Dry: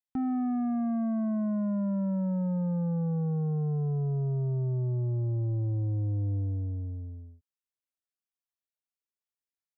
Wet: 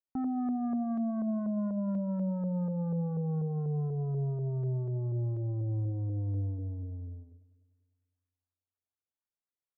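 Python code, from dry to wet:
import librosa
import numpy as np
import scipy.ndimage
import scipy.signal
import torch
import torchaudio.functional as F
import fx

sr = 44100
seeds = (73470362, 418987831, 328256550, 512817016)

y = fx.echo_wet_lowpass(x, sr, ms=100, feedback_pct=68, hz=950.0, wet_db=-18.0)
y = fx.filter_lfo_lowpass(y, sr, shape='saw_up', hz=4.1, low_hz=480.0, high_hz=1600.0, q=1.5)
y = y * librosa.db_to_amplitude(-3.5)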